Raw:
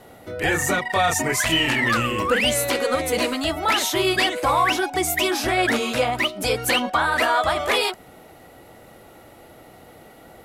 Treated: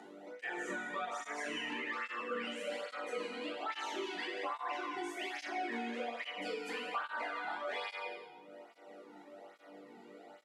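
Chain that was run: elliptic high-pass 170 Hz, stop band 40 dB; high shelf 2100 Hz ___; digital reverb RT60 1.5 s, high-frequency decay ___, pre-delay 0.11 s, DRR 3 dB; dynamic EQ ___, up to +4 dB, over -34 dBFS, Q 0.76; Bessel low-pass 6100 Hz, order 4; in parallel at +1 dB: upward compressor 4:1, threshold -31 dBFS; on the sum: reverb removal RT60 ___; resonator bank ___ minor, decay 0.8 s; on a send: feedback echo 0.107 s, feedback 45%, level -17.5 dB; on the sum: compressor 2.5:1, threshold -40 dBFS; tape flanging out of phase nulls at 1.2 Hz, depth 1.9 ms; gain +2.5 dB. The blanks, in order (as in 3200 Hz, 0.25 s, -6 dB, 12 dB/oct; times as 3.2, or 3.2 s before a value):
-4 dB, 0.55×, 1400 Hz, 0.78 s, G2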